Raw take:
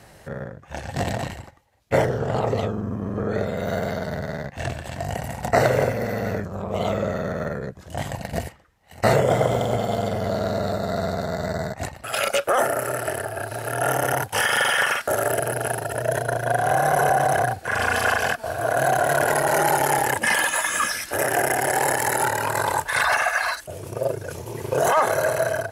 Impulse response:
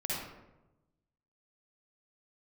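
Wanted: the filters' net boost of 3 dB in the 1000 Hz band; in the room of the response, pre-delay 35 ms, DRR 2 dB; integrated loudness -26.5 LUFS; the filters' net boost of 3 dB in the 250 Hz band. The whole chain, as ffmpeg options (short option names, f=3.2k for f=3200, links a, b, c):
-filter_complex "[0:a]equalizer=f=250:t=o:g=4,equalizer=f=1k:t=o:g=4,asplit=2[a][b];[1:a]atrim=start_sample=2205,adelay=35[c];[b][c]afir=irnorm=-1:irlink=0,volume=-6.5dB[d];[a][d]amix=inputs=2:normalize=0,volume=-7.5dB"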